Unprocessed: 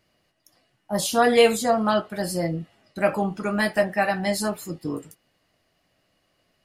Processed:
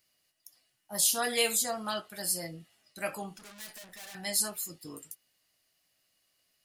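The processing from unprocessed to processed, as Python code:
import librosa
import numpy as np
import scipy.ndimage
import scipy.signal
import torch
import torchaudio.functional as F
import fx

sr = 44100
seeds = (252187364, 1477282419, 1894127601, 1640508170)

y = fx.tube_stage(x, sr, drive_db=37.0, bias=0.65, at=(3.38, 4.15))
y = F.preemphasis(torch.from_numpy(y), 0.9).numpy()
y = y * librosa.db_to_amplitude(3.0)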